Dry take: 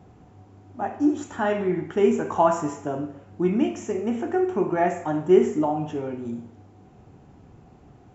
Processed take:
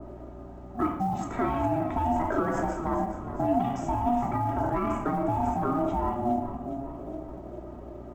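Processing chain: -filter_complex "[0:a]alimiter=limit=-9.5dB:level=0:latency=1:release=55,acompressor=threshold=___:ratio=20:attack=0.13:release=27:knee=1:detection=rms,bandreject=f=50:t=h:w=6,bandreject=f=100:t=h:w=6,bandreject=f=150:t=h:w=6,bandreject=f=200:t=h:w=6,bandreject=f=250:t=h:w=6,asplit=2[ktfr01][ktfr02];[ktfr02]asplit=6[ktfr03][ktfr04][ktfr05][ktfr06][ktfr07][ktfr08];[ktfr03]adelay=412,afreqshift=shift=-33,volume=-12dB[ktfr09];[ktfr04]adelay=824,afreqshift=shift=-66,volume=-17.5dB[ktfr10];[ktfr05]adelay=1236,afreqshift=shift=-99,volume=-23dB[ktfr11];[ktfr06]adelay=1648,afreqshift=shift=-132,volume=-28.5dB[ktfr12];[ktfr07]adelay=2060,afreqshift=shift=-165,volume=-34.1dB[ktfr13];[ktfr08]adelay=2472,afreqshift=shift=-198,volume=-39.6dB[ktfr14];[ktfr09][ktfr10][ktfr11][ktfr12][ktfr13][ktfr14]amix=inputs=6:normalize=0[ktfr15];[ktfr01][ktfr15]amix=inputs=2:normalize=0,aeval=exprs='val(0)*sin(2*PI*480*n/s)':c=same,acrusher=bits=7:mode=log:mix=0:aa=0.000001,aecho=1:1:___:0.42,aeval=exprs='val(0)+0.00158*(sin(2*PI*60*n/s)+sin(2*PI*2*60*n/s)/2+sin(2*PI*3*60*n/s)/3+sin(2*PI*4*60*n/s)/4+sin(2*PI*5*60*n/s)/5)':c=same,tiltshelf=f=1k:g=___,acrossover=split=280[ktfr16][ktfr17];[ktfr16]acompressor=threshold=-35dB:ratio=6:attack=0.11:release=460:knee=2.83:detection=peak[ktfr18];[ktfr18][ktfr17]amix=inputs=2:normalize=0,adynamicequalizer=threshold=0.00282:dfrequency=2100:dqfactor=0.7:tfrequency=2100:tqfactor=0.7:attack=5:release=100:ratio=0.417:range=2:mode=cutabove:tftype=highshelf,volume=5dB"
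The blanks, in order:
-24dB, 3.1, 6.5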